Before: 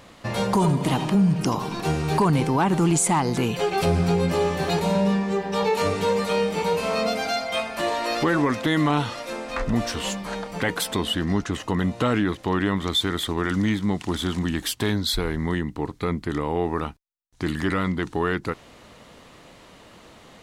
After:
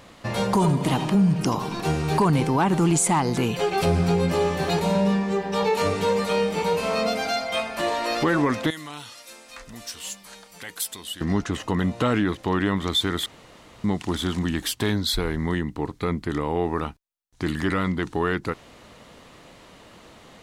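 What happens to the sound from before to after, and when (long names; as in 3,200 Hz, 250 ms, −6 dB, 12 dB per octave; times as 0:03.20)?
0:08.70–0:11.21: first-order pre-emphasis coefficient 0.9
0:13.26–0:13.84: fill with room tone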